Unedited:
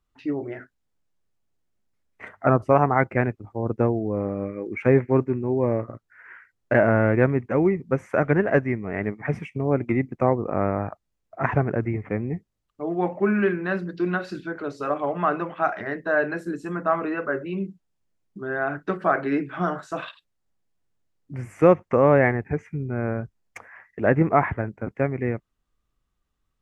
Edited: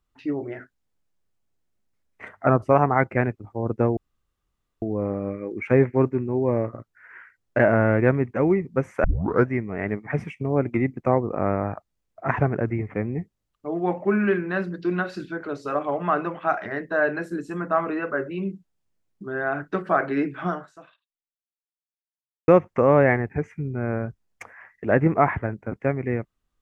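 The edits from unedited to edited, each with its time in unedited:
0:03.97: splice in room tone 0.85 s
0:08.19: tape start 0.43 s
0:19.61–0:21.63: fade out exponential

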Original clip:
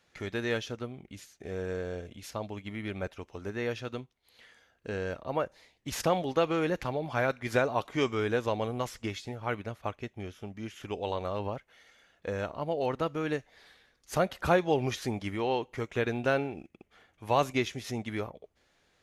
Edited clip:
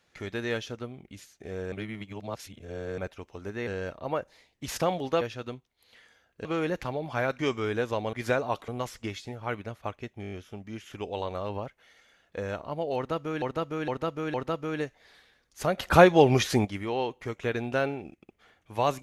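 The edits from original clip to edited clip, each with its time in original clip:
0:01.72–0:02.98: reverse
0:03.67–0:04.91: move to 0:06.45
0:07.39–0:07.94: move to 0:08.68
0:10.22: stutter 0.02 s, 6 plays
0:12.86–0:13.32: repeat, 4 plays
0:14.30–0:15.17: clip gain +8.5 dB

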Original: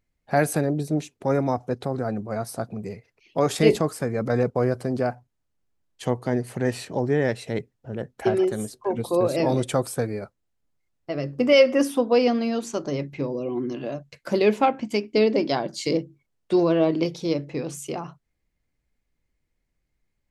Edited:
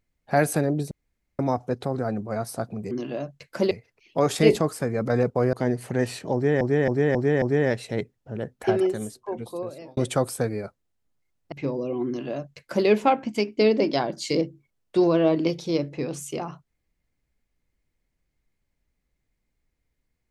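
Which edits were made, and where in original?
0:00.91–0:01.39: fill with room tone
0:04.73–0:06.19: remove
0:07.00–0:07.27: repeat, 5 plays
0:08.28–0:09.55: fade out
0:11.10–0:13.08: remove
0:13.63–0:14.43: duplicate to 0:02.91

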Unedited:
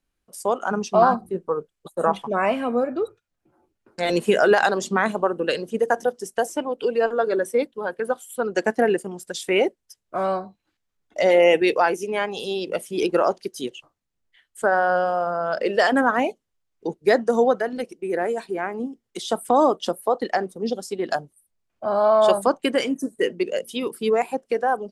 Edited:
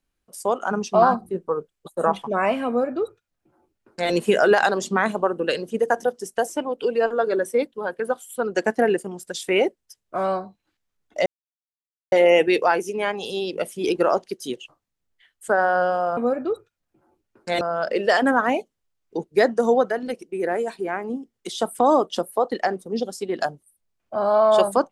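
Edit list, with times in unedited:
0:02.68–0:04.12: duplicate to 0:15.31
0:11.26: splice in silence 0.86 s

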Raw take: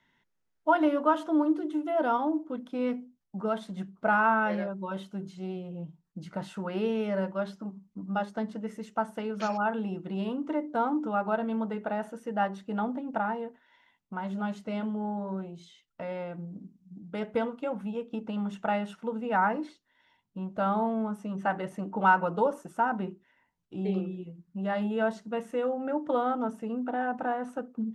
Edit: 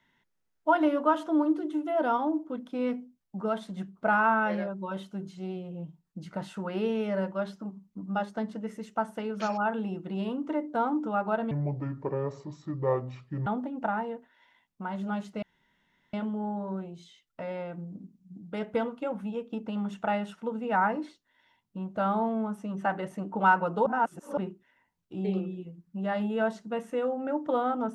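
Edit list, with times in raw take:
0:11.51–0:12.78: play speed 65%
0:14.74: splice in room tone 0.71 s
0:22.47–0:22.98: reverse

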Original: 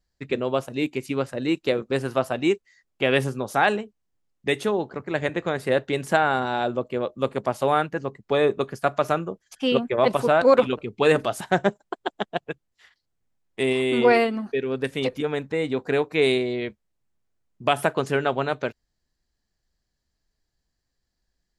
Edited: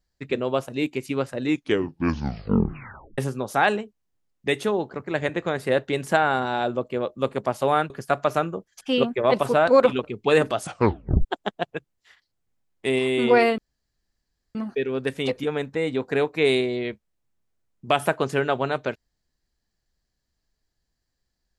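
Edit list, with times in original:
0:01.41: tape stop 1.77 s
0:07.90–0:08.64: remove
0:11.34: tape stop 0.65 s
0:14.32: splice in room tone 0.97 s

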